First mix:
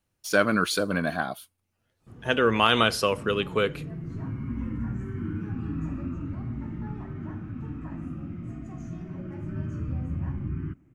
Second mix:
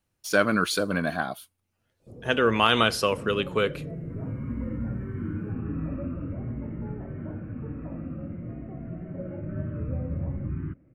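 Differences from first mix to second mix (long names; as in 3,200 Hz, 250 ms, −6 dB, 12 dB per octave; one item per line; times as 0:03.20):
first sound: add low-pass with resonance 540 Hz, resonance Q 5
second sound: add low-pass filter 2,600 Hz 24 dB per octave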